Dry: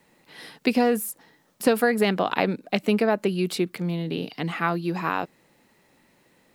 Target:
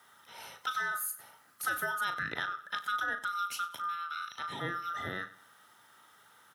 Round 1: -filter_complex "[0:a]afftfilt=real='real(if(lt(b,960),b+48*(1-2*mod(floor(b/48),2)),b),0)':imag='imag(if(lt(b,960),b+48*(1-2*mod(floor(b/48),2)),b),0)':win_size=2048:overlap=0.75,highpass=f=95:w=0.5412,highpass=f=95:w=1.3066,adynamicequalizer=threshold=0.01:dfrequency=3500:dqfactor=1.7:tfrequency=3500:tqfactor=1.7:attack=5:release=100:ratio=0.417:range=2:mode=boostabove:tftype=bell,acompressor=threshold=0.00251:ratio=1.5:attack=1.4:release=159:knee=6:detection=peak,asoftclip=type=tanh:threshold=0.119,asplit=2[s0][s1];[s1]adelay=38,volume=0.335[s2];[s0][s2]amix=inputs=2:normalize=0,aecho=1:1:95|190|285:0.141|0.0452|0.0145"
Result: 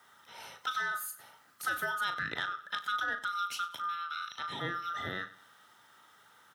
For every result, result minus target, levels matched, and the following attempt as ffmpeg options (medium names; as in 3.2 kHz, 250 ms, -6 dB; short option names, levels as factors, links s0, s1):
saturation: distortion +20 dB; 8 kHz band -3.5 dB; 4 kHz band +2.5 dB
-filter_complex "[0:a]afftfilt=real='real(if(lt(b,960),b+48*(1-2*mod(floor(b/48),2)),b),0)':imag='imag(if(lt(b,960),b+48*(1-2*mod(floor(b/48),2)),b),0)':win_size=2048:overlap=0.75,highpass=f=95:w=0.5412,highpass=f=95:w=1.3066,adynamicequalizer=threshold=0.01:dfrequency=3500:dqfactor=1.7:tfrequency=3500:tqfactor=1.7:attack=5:release=100:ratio=0.417:range=2:mode=boostabove:tftype=bell,acompressor=threshold=0.00251:ratio=1.5:attack=1.4:release=159:knee=6:detection=peak,asoftclip=type=tanh:threshold=0.376,asplit=2[s0][s1];[s1]adelay=38,volume=0.335[s2];[s0][s2]amix=inputs=2:normalize=0,aecho=1:1:95|190|285:0.141|0.0452|0.0145"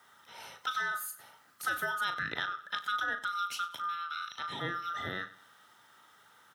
8 kHz band -4.0 dB; 4 kHz band +2.5 dB
-filter_complex "[0:a]afftfilt=real='real(if(lt(b,960),b+48*(1-2*mod(floor(b/48),2)),b),0)':imag='imag(if(lt(b,960),b+48*(1-2*mod(floor(b/48),2)),b),0)':win_size=2048:overlap=0.75,highpass=f=95:w=0.5412,highpass=f=95:w=1.3066,adynamicequalizer=threshold=0.01:dfrequency=3500:dqfactor=1.7:tfrequency=3500:tqfactor=1.7:attack=5:release=100:ratio=0.417:range=2:mode=boostabove:tftype=bell,acompressor=threshold=0.00251:ratio=1.5:attack=1.4:release=159:knee=6:detection=peak,equalizer=f=11000:w=2.4:g=7,asoftclip=type=tanh:threshold=0.376,asplit=2[s0][s1];[s1]adelay=38,volume=0.335[s2];[s0][s2]amix=inputs=2:normalize=0,aecho=1:1:95|190|285:0.141|0.0452|0.0145"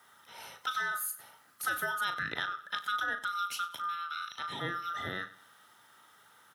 4 kHz band +2.5 dB
-filter_complex "[0:a]afftfilt=real='real(if(lt(b,960),b+48*(1-2*mod(floor(b/48),2)),b),0)':imag='imag(if(lt(b,960),b+48*(1-2*mod(floor(b/48),2)),b),0)':win_size=2048:overlap=0.75,highpass=f=95:w=0.5412,highpass=f=95:w=1.3066,acompressor=threshold=0.00251:ratio=1.5:attack=1.4:release=159:knee=6:detection=peak,equalizer=f=11000:w=2.4:g=7,asoftclip=type=tanh:threshold=0.376,asplit=2[s0][s1];[s1]adelay=38,volume=0.335[s2];[s0][s2]amix=inputs=2:normalize=0,aecho=1:1:95|190|285:0.141|0.0452|0.0145"